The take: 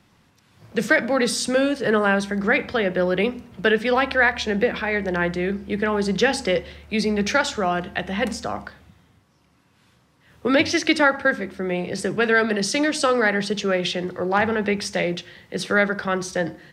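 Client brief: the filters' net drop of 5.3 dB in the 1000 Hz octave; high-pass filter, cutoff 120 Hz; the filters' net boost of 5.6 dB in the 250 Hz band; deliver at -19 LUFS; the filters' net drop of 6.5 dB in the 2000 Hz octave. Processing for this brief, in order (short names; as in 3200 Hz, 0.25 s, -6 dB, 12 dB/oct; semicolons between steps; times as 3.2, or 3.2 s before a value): HPF 120 Hz; bell 250 Hz +8 dB; bell 1000 Hz -6.5 dB; bell 2000 Hz -6 dB; gain +2 dB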